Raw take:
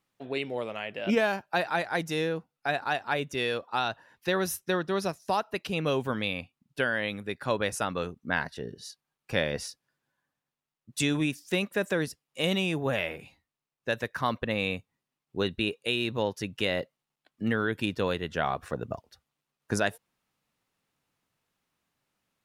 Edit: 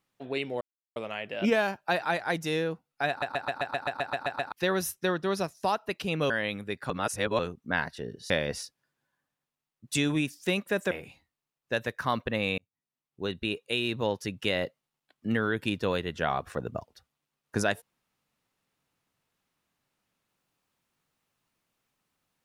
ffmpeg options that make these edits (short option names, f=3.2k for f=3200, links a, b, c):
-filter_complex "[0:a]asplit=19[a][b][c][d][e][f][g][h][i][j][k][l][m][n][o][p][q][r][s];[a]atrim=end=0.61,asetpts=PTS-STARTPTS,afade=t=out:st=0.606:d=0.004:c=hsin,apad=pad_dur=0.35[t];[b]atrim=start=0.61:end=2.872,asetpts=PTS-STARTPTS,afade=t=in:d=0.004:c=hsin[u];[c]atrim=start=2.738:end=2.872[v];[d]atrim=start=2.738:end=2.872[w];[e]atrim=start=2.738:end=2.872[x];[f]atrim=start=2.738:end=2.872[y];[g]atrim=start=2.738:end=2.872[z];[h]atrim=start=2.738:end=2.872[aa];[i]atrim=start=2.738:end=2.872[ab];[j]atrim=start=2.738:end=2.872[ac];[k]atrim=start=2.738:end=2.872[ad];[l]atrim=start=2.738:end=2.872[ae];[m]atrim=start=4.168:end=5.952[af];[n]atrim=start=6.888:end=7.492[ag];[o]atrim=start=7.488:end=7.982,asetpts=PTS-STARTPTS,areverse[ah];[p]atrim=start=7.978:end=8.892[ai];[q]atrim=start=9.348:end=11.962[aj];[r]atrim=start=13.068:end=14.74,asetpts=PTS-STARTPTS,afade=t=out:st=1.668:d=0.004:c=hsin[ak];[s]atrim=start=14.74,asetpts=PTS-STARTPTS,afade=t=in:d=1.59:c=qsin[al];[t][u]concat=n=2:v=0:a=1[am];[am][v]acrossfade=d=0.004:c1=hsin:c2=hsin[an];[an][w]acrossfade=d=0.004:c1=hsin:c2=hsin[ao];[ao][x]acrossfade=d=0.004:c1=hsin:c2=hsin[ap];[ap][y]acrossfade=d=0.004:c1=hsin:c2=hsin[aq];[aq][z]acrossfade=d=0.004:c1=hsin:c2=hsin[ar];[ar][aa]acrossfade=d=0.004:c1=hsin:c2=hsin[as];[as][ab]acrossfade=d=0.004:c1=hsin:c2=hsin[at];[at][ac]acrossfade=d=0.004:c1=hsin:c2=hsin[au];[au][ad]acrossfade=d=0.004:c1=hsin:c2=hsin[av];[av][ae]acrossfade=d=0.004:c1=hsin:c2=hsin[aw];[aw][af]acrossfade=d=0.004:c1=hsin:c2=hsin[ax];[ax][ag]acrossfade=d=0.004:c1=hsin:c2=hsin[ay];[ay][ah]acrossfade=d=0.004:c1=hsin:c2=hsin[az];[az][ai]acrossfade=d=0.004:c1=hsin:c2=hsin[ba];[ba][aj]acrossfade=d=0.004:c1=hsin:c2=hsin[bb];[ak][al]concat=n=2:v=0:a=1[bc];[bb][bc]acrossfade=d=0.004:c1=hsin:c2=hsin"